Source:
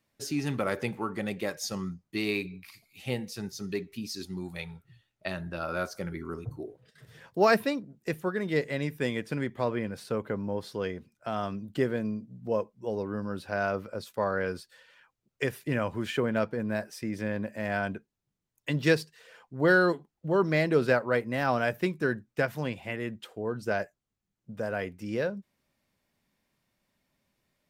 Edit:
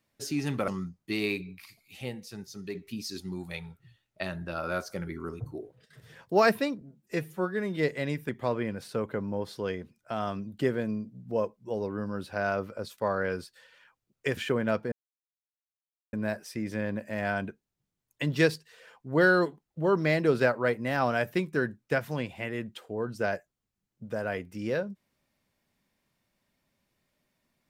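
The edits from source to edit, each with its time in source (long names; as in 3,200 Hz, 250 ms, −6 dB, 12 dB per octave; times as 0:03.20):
0:00.68–0:01.73: remove
0:03.07–0:03.80: clip gain −5 dB
0:07.86–0:08.50: time-stretch 1.5×
0:09.02–0:09.45: remove
0:15.53–0:16.05: remove
0:16.60: splice in silence 1.21 s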